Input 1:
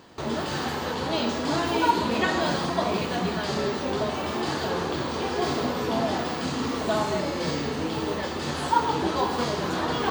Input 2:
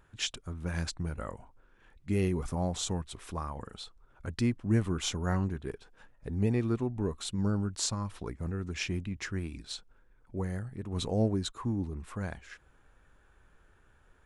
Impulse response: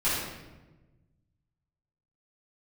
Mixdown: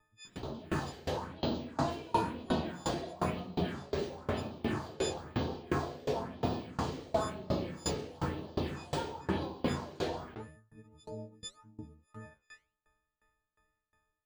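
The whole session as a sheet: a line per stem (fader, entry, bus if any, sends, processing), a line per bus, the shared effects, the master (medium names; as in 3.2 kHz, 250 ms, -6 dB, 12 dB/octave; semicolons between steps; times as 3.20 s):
-3.0 dB, 0.25 s, send -11.5 dB, phase shifter stages 4, 1 Hz, lowest notch 170–2000 Hz; level flattener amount 50%
-4.5 dB, 0.00 s, no send, partials quantised in pitch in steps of 6 st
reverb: on, RT60 1.2 s, pre-delay 4 ms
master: treble shelf 3.2 kHz -8.5 dB; flange 1.8 Hz, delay 6.8 ms, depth 8.5 ms, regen -88%; sawtooth tremolo in dB decaying 2.8 Hz, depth 25 dB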